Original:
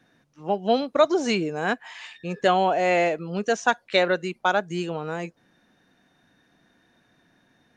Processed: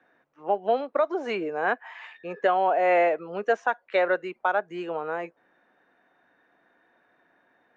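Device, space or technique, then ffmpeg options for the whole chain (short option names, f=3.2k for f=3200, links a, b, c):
DJ mixer with the lows and highs turned down: -filter_complex "[0:a]acrossover=split=360 2300:gain=0.1 1 0.0708[a][b][c];[a][b][c]amix=inputs=3:normalize=0,alimiter=limit=-15dB:level=0:latency=1:release=413,volume=2.5dB"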